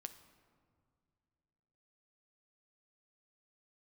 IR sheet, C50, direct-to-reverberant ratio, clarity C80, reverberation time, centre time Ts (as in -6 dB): 12.0 dB, 9.0 dB, 13.5 dB, no single decay rate, 11 ms